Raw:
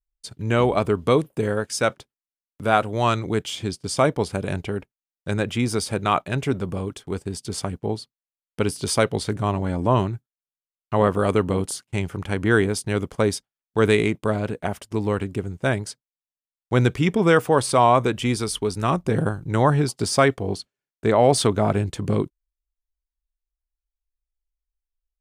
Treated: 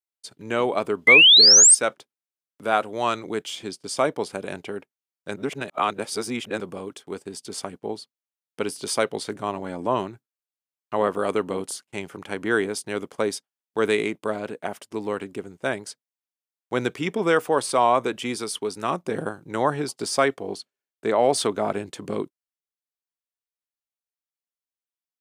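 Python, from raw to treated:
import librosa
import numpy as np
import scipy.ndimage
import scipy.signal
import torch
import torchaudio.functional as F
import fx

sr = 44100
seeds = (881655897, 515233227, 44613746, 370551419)

y = fx.spec_paint(x, sr, seeds[0], shape='rise', start_s=1.07, length_s=0.68, low_hz=2000.0, high_hz=9000.0, level_db=-9.0)
y = fx.edit(y, sr, fx.reverse_span(start_s=5.36, length_s=1.24), tone=tone)
y = scipy.signal.sosfilt(scipy.signal.butter(2, 270.0, 'highpass', fs=sr, output='sos'), y)
y = F.gain(torch.from_numpy(y), -2.5).numpy()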